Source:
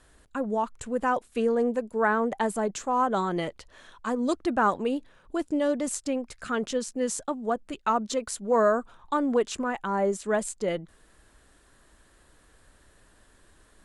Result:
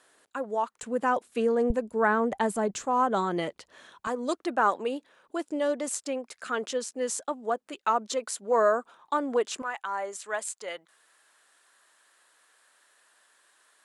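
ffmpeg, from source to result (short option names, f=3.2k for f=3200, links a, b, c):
-af "asetnsamples=n=441:p=0,asendcmd='0.83 highpass f 190;1.7 highpass f 49;2.85 highpass f 170;4.07 highpass f 370;9.62 highpass f 880',highpass=410"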